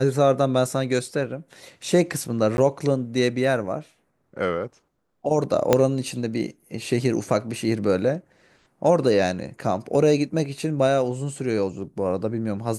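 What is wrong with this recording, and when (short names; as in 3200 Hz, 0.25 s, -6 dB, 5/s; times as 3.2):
2.57–2.58 gap
5.73 pop -3 dBFS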